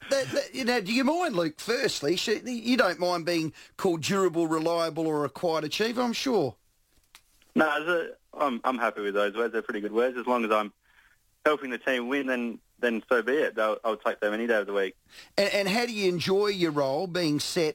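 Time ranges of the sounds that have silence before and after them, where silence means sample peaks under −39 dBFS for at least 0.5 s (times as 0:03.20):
0:07.15–0:10.68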